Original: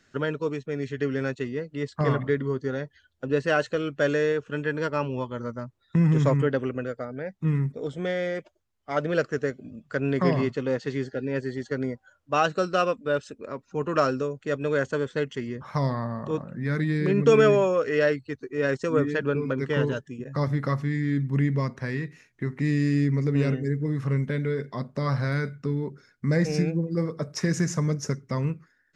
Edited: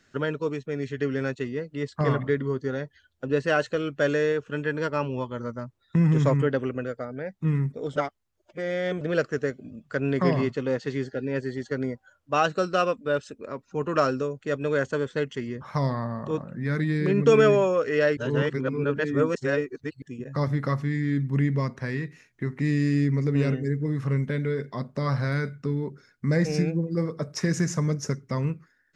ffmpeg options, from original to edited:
ffmpeg -i in.wav -filter_complex "[0:a]asplit=5[link_01][link_02][link_03][link_04][link_05];[link_01]atrim=end=7.962[link_06];[link_02]atrim=start=7.958:end=9.012,asetpts=PTS-STARTPTS,areverse[link_07];[link_03]atrim=start=9.008:end=18.172[link_08];[link_04]atrim=start=18.168:end=20.022,asetpts=PTS-STARTPTS,areverse[link_09];[link_05]atrim=start=20.018[link_10];[link_06][link_07]acrossfade=duration=0.004:curve1=hsin:curve2=hsin[link_11];[link_11][link_08]acrossfade=duration=0.004:curve1=hsin:curve2=hsin[link_12];[link_12][link_09]acrossfade=duration=0.004:curve1=hsin:curve2=hsin[link_13];[link_13][link_10]acrossfade=duration=0.004:curve1=hsin:curve2=hsin" out.wav

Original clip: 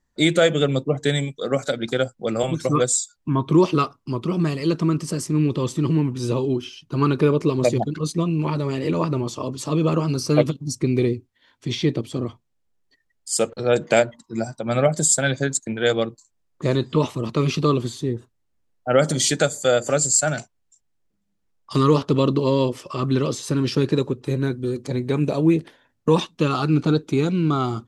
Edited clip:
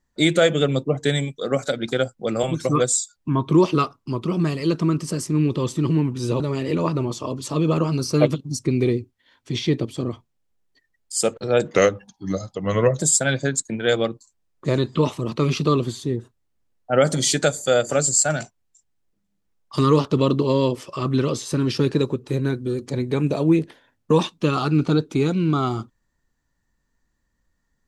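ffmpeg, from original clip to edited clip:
ffmpeg -i in.wav -filter_complex "[0:a]asplit=4[link_01][link_02][link_03][link_04];[link_01]atrim=end=6.402[link_05];[link_02]atrim=start=8.558:end=13.904[link_06];[link_03]atrim=start=13.9:end=14.96,asetpts=PTS-STARTPTS,asetrate=37485,aresample=44100,atrim=end_sample=54995,asetpts=PTS-STARTPTS[link_07];[link_04]atrim=start=14.956[link_08];[link_05][link_06]acrossfade=duration=0.004:curve1=hsin:curve2=hsin[link_09];[link_09][link_07]acrossfade=duration=0.004:curve1=hsin:curve2=hsin[link_10];[link_10][link_08]acrossfade=duration=0.004:curve1=hsin:curve2=hsin" out.wav

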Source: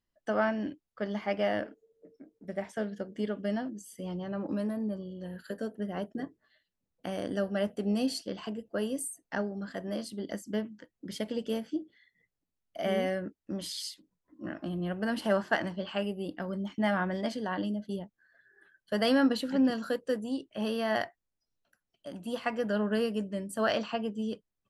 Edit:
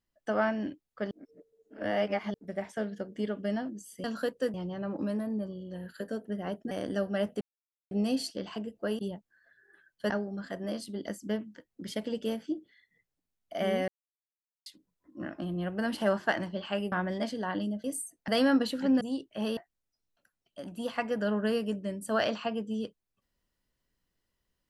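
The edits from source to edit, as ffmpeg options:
ffmpeg -i in.wav -filter_complex "[0:a]asplit=16[link_01][link_02][link_03][link_04][link_05][link_06][link_07][link_08][link_09][link_10][link_11][link_12][link_13][link_14][link_15][link_16];[link_01]atrim=end=1.112[link_17];[link_02]atrim=start=1.108:end=2.342,asetpts=PTS-STARTPTS,areverse[link_18];[link_03]atrim=start=2.338:end=4.042[link_19];[link_04]atrim=start=19.708:end=20.212[link_20];[link_05]atrim=start=4.038:end=6.212[link_21];[link_06]atrim=start=7.118:end=7.82,asetpts=PTS-STARTPTS,afade=type=out:start_time=0.698:duration=0.004:curve=hsin,apad=pad_dur=0.5[link_22];[link_07]atrim=start=7.82:end=8.902,asetpts=PTS-STARTPTS,afade=type=in:duration=0.004:curve=hsin[link_23];[link_08]atrim=start=17.868:end=18.982[link_24];[link_09]atrim=start=9.338:end=13.12,asetpts=PTS-STARTPTS,afade=type=out:start_time=3.778:duration=0.004:curve=hsin[link_25];[link_10]atrim=start=13.12:end=13.9,asetpts=PTS-STARTPTS,volume=0[link_26];[link_11]atrim=start=13.9:end=16.162,asetpts=PTS-STARTPTS,afade=type=in:duration=0.004:curve=hsin[link_27];[link_12]atrim=start=16.948:end=17.872[link_28];[link_13]atrim=start=8.898:end=9.342[link_29];[link_14]atrim=start=18.978:end=19.712[link_30];[link_15]atrim=start=20.208:end=20.772[link_31];[link_16]atrim=start=21.048[link_32];[link_17][link_18]acrossfade=duration=0.004:curve1=hsin:curve2=hsin[link_33];[link_33][link_19]acrossfade=duration=0.004:curve1=hsin:curve2=hsin[link_34];[link_34][link_20]acrossfade=duration=0.004:curve1=hsin:curve2=hsin[link_35];[link_35][link_21]acrossfade=duration=0.004:curve1=hsin:curve2=hsin[link_36];[link_22][link_23]concat=n=2:v=0:a=1[link_37];[link_36][link_37]acrossfade=duration=0.004:curve1=hsin:curve2=hsin[link_38];[link_38][link_24]acrossfade=duration=0.004:curve1=hsin:curve2=hsin[link_39];[link_25][link_26][link_27]concat=n=3:v=0:a=1[link_40];[link_39][link_40]acrossfade=duration=0.004:curve1=hsin:curve2=hsin[link_41];[link_41][link_28]acrossfade=duration=0.004:curve1=hsin:curve2=hsin[link_42];[link_42][link_29]acrossfade=duration=0.004:curve1=hsin:curve2=hsin[link_43];[link_43][link_30]acrossfade=duration=0.004:curve1=hsin:curve2=hsin[link_44];[link_44][link_31]acrossfade=duration=0.004:curve1=hsin:curve2=hsin[link_45];[link_45][link_32]acrossfade=duration=0.004:curve1=hsin:curve2=hsin" out.wav

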